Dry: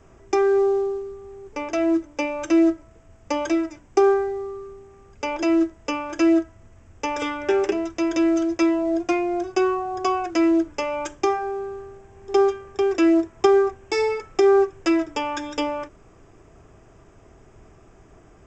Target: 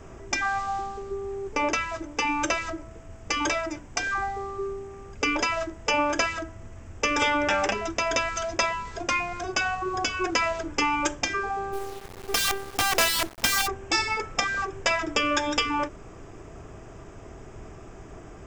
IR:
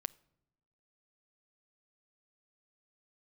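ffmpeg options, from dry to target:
-filter_complex "[0:a]asplit=3[a][b][c];[a]afade=t=out:st=11.72:d=0.02[d];[b]acrusher=bits=5:dc=4:mix=0:aa=0.000001,afade=t=in:st=11.72:d=0.02,afade=t=out:st=13.66:d=0.02[e];[c]afade=t=in:st=13.66:d=0.02[f];[d][e][f]amix=inputs=3:normalize=0,afftfilt=real='re*lt(hypot(re,im),0.251)':imag='im*lt(hypot(re,im),0.251)':win_size=1024:overlap=0.75,volume=7dB"

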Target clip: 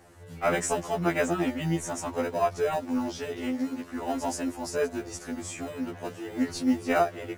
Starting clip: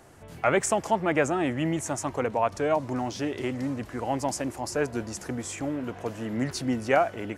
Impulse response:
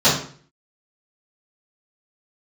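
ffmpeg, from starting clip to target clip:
-filter_complex "[0:a]asettb=1/sr,asplit=3[a][b][c];[a]atrim=end=3.514[d];[b]atrim=start=3.51:end=3.91,asetpts=PTS-STARTPTS,afade=t=in:d=0.004:c=qsin,afade=t=out:st=0.396:d=0.004:c=qsin,highpass=160[e];[c]atrim=start=3.906[f];[d][e]acrossfade=d=0.004:c1=hsin:c2=qsin[g];[g][f]acrossfade=d=0.004:c1=qsin:c2=hsin,asplit=2[h][i];[i]acrusher=samples=40:mix=1:aa=0.000001,volume=-11.5dB[j];[h][j]amix=inputs=2:normalize=0,afftfilt=real='re*2*eq(mod(b,4),0)':imag='im*2*eq(mod(b,4),0)':win_size=2048:overlap=0.75"

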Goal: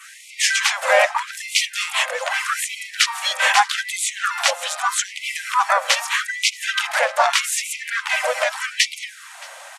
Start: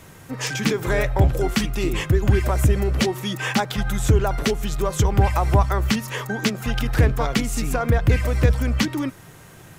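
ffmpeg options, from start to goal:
-filter_complex "[0:a]apsyclip=12.5dB,adynamicequalizer=threshold=0.0282:dfrequency=4400:dqfactor=1.7:tfrequency=4400:tqfactor=1.7:attack=5:release=100:ratio=0.375:range=2.5:mode=cutabove:tftype=bell,aresample=22050,aresample=44100,acrossover=split=130|1400[a][b][c];[a]acompressor=threshold=-16dB:ratio=8[d];[d][b][c]amix=inputs=3:normalize=0,asplit=3[e][f][g];[f]asetrate=22050,aresample=44100,atempo=2,volume=-16dB[h];[g]asetrate=55563,aresample=44100,atempo=0.793701,volume=-5dB[i];[e][h][i]amix=inputs=3:normalize=0,asplit=2[j][k];[k]aecho=0:1:623:0.0668[l];[j][l]amix=inputs=2:normalize=0,afftfilt=real='re*gte(b*sr/1024,480*pow(2000/480,0.5+0.5*sin(2*PI*0.81*pts/sr)))':imag='im*gte(b*sr/1024,480*pow(2000/480,0.5+0.5*sin(2*PI*0.81*pts/sr)))':win_size=1024:overlap=0.75,volume=-3.5dB"

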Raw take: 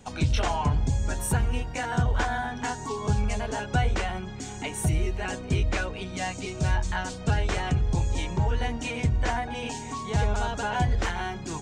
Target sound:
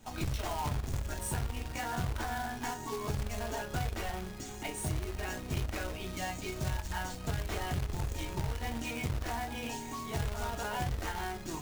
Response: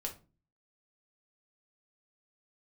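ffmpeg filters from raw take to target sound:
-filter_complex "[1:a]atrim=start_sample=2205,afade=t=out:st=0.15:d=0.01,atrim=end_sample=7056,asetrate=66150,aresample=44100[a];[0:a][a]afir=irnorm=-1:irlink=0,acrusher=bits=2:mode=log:mix=0:aa=0.000001,acompressor=threshold=-28dB:ratio=6,volume=-2dB"

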